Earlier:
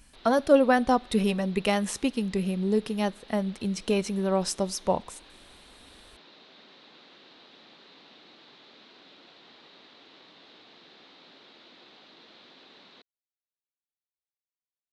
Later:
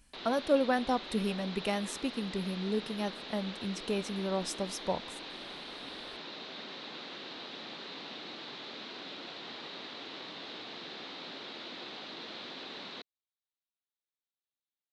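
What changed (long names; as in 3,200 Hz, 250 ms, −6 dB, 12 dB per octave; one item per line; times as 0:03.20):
speech −7.5 dB
background +9.5 dB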